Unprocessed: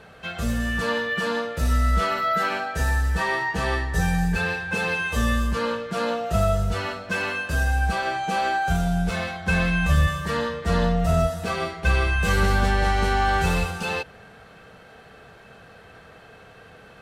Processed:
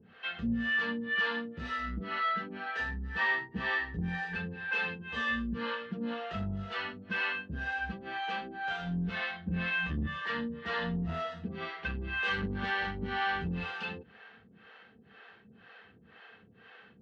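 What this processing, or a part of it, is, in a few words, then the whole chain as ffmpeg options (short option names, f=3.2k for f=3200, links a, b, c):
guitar amplifier with harmonic tremolo: -filter_complex "[0:a]acrossover=split=410[a][b];[a]aeval=exprs='val(0)*(1-1/2+1/2*cos(2*PI*2*n/s))':c=same[c];[b]aeval=exprs='val(0)*(1-1/2-1/2*cos(2*PI*2*n/s))':c=same[d];[c][d]amix=inputs=2:normalize=0,asoftclip=type=tanh:threshold=-19dB,highpass=99,equalizer=f=140:t=q:w=4:g=-4,equalizer=f=220:t=q:w=4:g=8,equalizer=f=610:t=q:w=4:g=-9,equalizer=f=1.8k:t=q:w=4:g=7,equalizer=f=3k:t=q:w=4:g=6,lowpass=f=4.1k:w=0.5412,lowpass=f=4.1k:w=1.3066,volume=-5.5dB"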